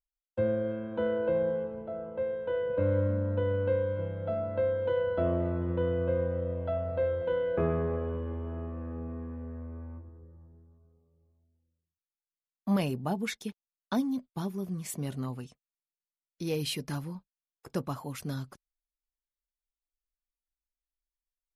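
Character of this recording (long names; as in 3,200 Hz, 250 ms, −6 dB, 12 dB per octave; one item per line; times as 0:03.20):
background noise floor −96 dBFS
spectral slope −6.5 dB per octave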